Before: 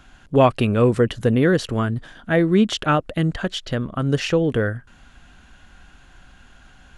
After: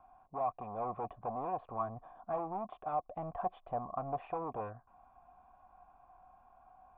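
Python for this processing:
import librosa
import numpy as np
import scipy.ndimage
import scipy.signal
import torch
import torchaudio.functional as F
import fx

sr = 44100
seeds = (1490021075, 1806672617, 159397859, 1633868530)

y = np.clip(x, -10.0 ** (-21.0 / 20.0), 10.0 ** (-21.0 / 20.0))
y = fx.formant_cascade(y, sr, vowel='a')
y = fx.rider(y, sr, range_db=5, speed_s=0.5)
y = y * librosa.db_to_amplitude(3.5)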